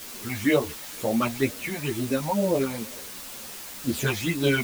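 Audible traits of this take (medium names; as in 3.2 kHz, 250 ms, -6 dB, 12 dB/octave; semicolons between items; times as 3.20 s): phasing stages 8, 2.1 Hz, lowest notch 380–2200 Hz; a quantiser's noise floor 8-bit, dither triangular; a shimmering, thickened sound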